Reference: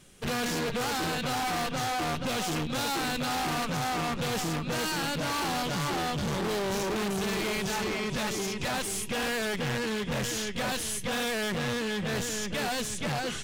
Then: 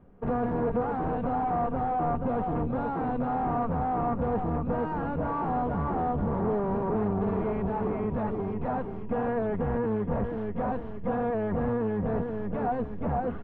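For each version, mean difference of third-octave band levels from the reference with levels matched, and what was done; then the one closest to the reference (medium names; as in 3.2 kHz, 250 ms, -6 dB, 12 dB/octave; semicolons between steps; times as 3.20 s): 16.5 dB: octave divider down 1 oct, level -1 dB; four-pole ladder low-pass 1.2 kHz, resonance 25%; comb 4.3 ms, depth 36%; trim +7 dB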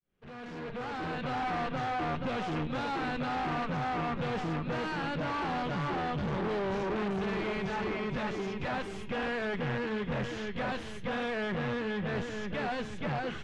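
8.0 dB: fade-in on the opening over 1.43 s; low-pass 2.2 kHz 12 dB/octave; de-hum 112.7 Hz, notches 39; trim -1.5 dB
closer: second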